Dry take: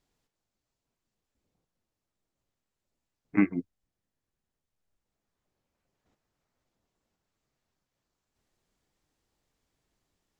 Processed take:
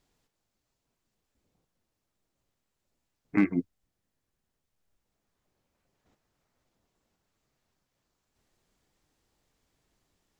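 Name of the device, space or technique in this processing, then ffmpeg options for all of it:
limiter into clipper: -af "alimiter=limit=-18dB:level=0:latency=1:release=20,asoftclip=type=hard:threshold=-19dB,volume=4dB"

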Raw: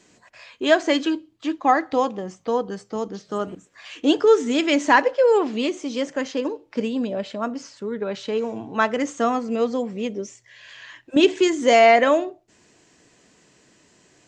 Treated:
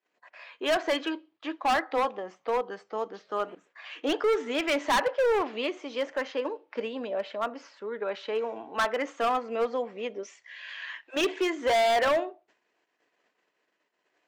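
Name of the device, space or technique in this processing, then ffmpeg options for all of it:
walkie-talkie: -filter_complex "[0:a]asettb=1/sr,asplit=3[a][b][c];[a]atrim=end=10.234[d];[b]atrim=start=10.23:end=11.21,asetpts=PTS-STARTPTS,afade=t=in:d=0.004:c=qsin,afade=t=out:st=0.976:d=0.004:c=qsin,tiltshelf=f=790:g=-7[e];[c]atrim=start=11.206[f];[d][e]acrossfade=d=0.004:c1=hsin:c2=qsin[g];[g][f]acrossfade=d=0.004:c1=qsin:c2=hsin,highpass=550,lowpass=2.7k,asoftclip=type=hard:threshold=-21dB,agate=range=-26dB:threshold=-60dB:ratio=16:detection=peak"

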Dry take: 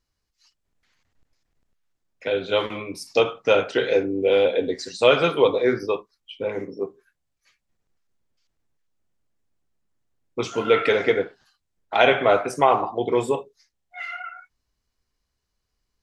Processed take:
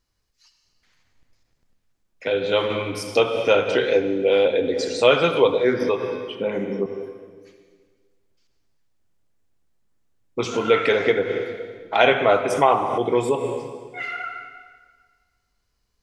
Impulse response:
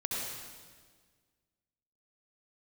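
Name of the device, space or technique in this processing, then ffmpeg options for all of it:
ducked reverb: -filter_complex "[0:a]asplit=3[a][b][c];[1:a]atrim=start_sample=2205[d];[b][d]afir=irnorm=-1:irlink=0[e];[c]apad=whole_len=706600[f];[e][f]sidechaincompress=threshold=-31dB:ratio=8:attack=28:release=118,volume=-5.5dB[g];[a][g]amix=inputs=2:normalize=0,asettb=1/sr,asplit=3[h][i][j];[h]atrim=end=6.354[k];[i]atrim=start=6.35:end=6.86,asetpts=PTS-STARTPTS,afade=t=in:d=0.004:c=qsin,afade=t=out:st=0.506:d=0.004:c=qsin,equalizer=f=100:t=o:w=0.33:g=-9,equalizer=f=200:t=o:w=0.33:g=10,equalizer=f=5k:t=o:w=0.33:g=-8[l];[j]atrim=start=6.856[m];[k][l]acrossfade=d=0.004:c1=hsin:c2=qsin[n];[n][m]acrossfade=d=0.004:c1=qsin:c2=hsin"

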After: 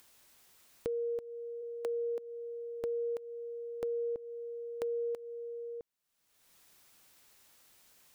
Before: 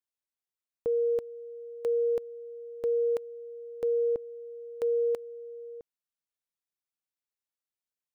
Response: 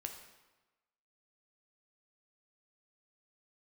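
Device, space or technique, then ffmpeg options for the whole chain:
upward and downward compression: -filter_complex "[0:a]asplit=3[a][b][c];[a]afade=t=out:st=1.61:d=0.02[d];[b]highpass=f=220:w=0.5412,highpass=f=220:w=1.3066,afade=t=in:st=1.61:d=0.02,afade=t=out:st=2.81:d=0.02[e];[c]afade=t=in:st=2.81:d=0.02[f];[d][e][f]amix=inputs=3:normalize=0,acompressor=mode=upward:threshold=-40dB:ratio=2.5,acompressor=threshold=-34dB:ratio=5"

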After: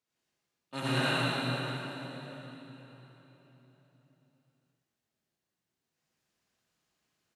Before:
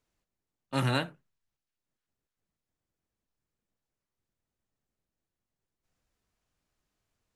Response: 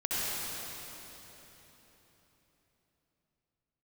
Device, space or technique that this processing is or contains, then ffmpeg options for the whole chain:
PA in a hall: -filter_complex "[0:a]highpass=130,equalizer=f=3.9k:t=o:w=2.4:g=4.5,aecho=1:1:118:0.501[a];[1:a]atrim=start_sample=2205[b];[a][b]afir=irnorm=-1:irlink=0,volume=-8dB"

